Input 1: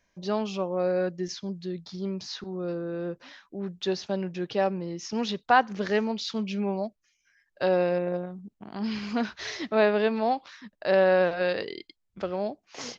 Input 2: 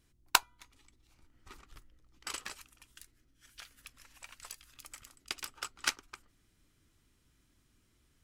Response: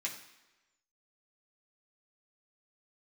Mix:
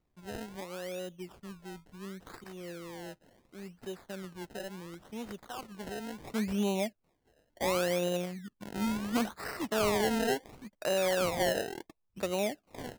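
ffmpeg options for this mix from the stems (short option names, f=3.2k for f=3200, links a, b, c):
-filter_complex "[0:a]highshelf=f=4.1k:g=-10,alimiter=limit=-20dB:level=0:latency=1:release=72,volume=-1dB,afade=t=in:st=6.16:d=0.27:silence=0.298538,asplit=2[a][b];[1:a]equalizer=f=5.8k:w=4.2:g=-14.5,volume=-7dB[c];[b]apad=whole_len=363003[d];[c][d]sidechaincompress=threshold=-44dB:ratio=5:attack=16:release=390[e];[a][e]amix=inputs=2:normalize=0,acrusher=samples=26:mix=1:aa=0.000001:lfo=1:lforange=26:lforate=0.71"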